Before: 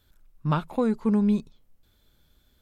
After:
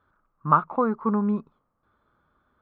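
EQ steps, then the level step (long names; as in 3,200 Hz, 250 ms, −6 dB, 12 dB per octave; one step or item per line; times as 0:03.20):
high-pass filter 190 Hz 6 dB per octave
low-pass with resonance 1,200 Hz, resonance Q 5.7
0.0 dB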